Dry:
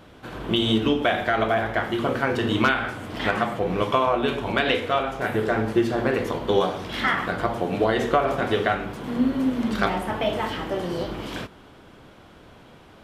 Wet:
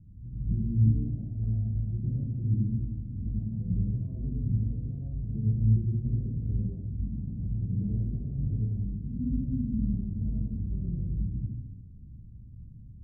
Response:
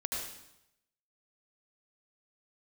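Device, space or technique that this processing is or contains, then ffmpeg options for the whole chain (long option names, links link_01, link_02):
club heard from the street: -filter_complex "[0:a]alimiter=limit=-12dB:level=0:latency=1:release=333,lowpass=frequency=150:width=0.5412,lowpass=frequency=150:width=1.3066[link_01];[1:a]atrim=start_sample=2205[link_02];[link_01][link_02]afir=irnorm=-1:irlink=0,volume=5dB"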